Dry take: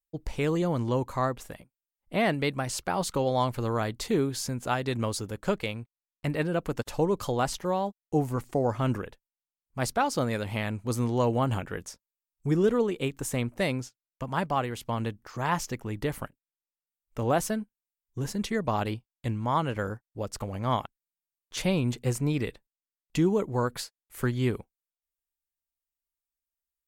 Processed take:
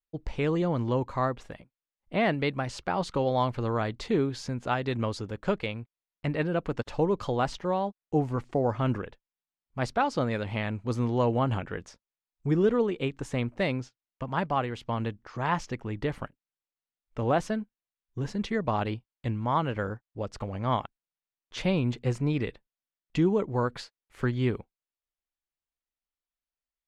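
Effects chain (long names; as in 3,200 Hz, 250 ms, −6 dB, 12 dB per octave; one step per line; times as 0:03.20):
low-pass filter 4,000 Hz 12 dB per octave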